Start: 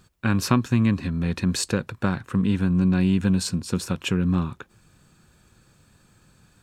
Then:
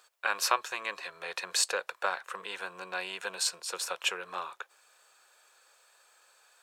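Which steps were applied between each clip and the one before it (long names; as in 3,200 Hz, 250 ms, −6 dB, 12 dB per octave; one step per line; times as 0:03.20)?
inverse Chebyshev high-pass filter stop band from 270 Hz, stop band 40 dB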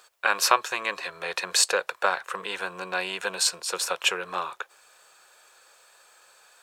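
low-shelf EQ 300 Hz +6 dB
level +6.5 dB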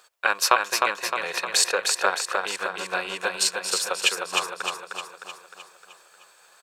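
transient designer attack +3 dB, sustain −5 dB
on a send: repeating echo 307 ms, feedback 54%, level −4 dB
on the sum: level −1 dB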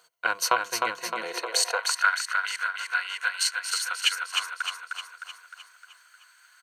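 EQ curve with evenly spaced ripples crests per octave 1.9, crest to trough 10 dB
high-pass filter sweep 130 Hz → 1,600 Hz, 0:00.95–0:02.08
level −5.5 dB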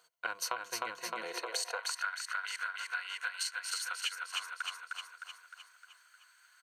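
downward compressor 5 to 1, threshold −26 dBFS, peak gain reduction 9.5 dB
level −6.5 dB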